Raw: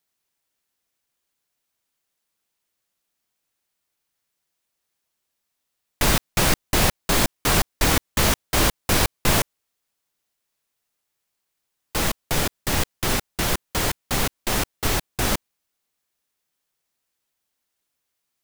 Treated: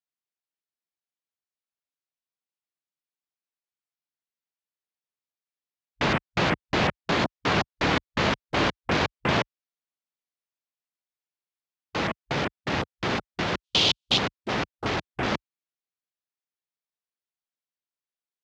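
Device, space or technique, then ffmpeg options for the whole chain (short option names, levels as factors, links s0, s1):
over-cleaned archive recording: -filter_complex "[0:a]acrossover=split=4500[s0][s1];[s1]acompressor=threshold=0.02:ratio=4:attack=1:release=60[s2];[s0][s2]amix=inputs=2:normalize=0,highpass=120,lowpass=5600,afwtdn=0.0224,asplit=3[s3][s4][s5];[s3]afade=t=out:st=13.63:d=0.02[s6];[s4]highshelf=f=2400:t=q:w=3:g=10.5,afade=t=in:st=13.63:d=0.02,afade=t=out:st=14.17:d=0.02[s7];[s5]afade=t=in:st=14.17:d=0.02[s8];[s6][s7][s8]amix=inputs=3:normalize=0,volume=0.891"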